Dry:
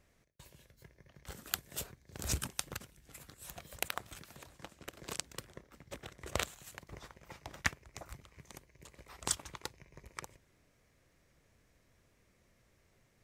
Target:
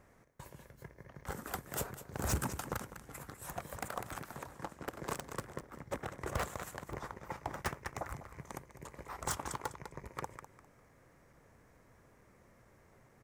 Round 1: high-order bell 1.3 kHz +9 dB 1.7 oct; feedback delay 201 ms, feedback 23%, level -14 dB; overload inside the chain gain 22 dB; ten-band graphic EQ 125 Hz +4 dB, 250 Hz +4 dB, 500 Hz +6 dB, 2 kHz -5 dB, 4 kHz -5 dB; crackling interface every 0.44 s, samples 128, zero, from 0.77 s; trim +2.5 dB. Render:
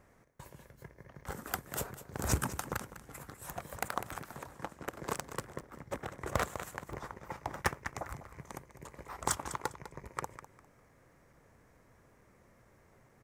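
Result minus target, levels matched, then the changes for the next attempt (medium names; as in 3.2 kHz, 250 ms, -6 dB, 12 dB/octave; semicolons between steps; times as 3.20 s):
overload inside the chain: distortion -5 dB
change: overload inside the chain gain 31.5 dB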